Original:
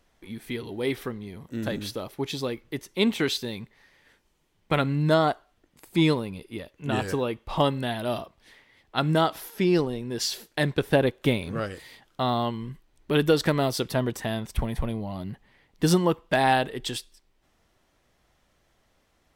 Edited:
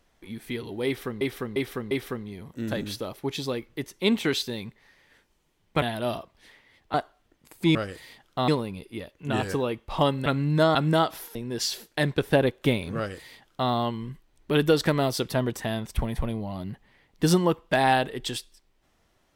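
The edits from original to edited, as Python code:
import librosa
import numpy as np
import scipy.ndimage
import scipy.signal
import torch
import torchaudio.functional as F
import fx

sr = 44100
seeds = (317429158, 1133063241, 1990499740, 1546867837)

y = fx.edit(x, sr, fx.repeat(start_s=0.86, length_s=0.35, count=4),
    fx.swap(start_s=4.77, length_s=0.49, other_s=7.85, other_length_s=1.12),
    fx.cut(start_s=9.57, length_s=0.38),
    fx.duplicate(start_s=11.57, length_s=0.73, to_s=6.07), tone=tone)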